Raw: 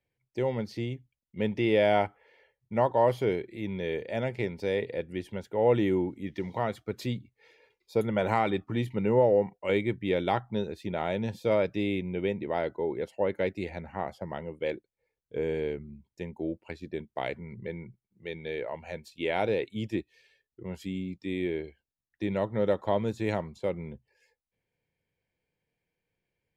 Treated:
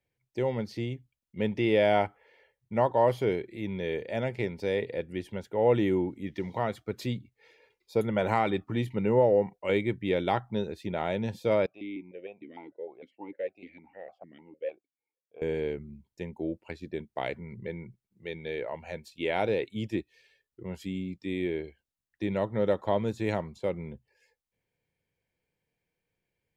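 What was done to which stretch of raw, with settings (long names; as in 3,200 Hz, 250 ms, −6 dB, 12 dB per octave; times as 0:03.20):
0:11.66–0:15.42: formant filter that steps through the vowels 6.6 Hz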